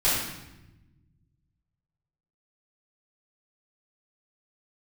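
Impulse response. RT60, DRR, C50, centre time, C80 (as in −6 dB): 1.0 s, −12.0 dB, −0.5 dB, 73 ms, 3.0 dB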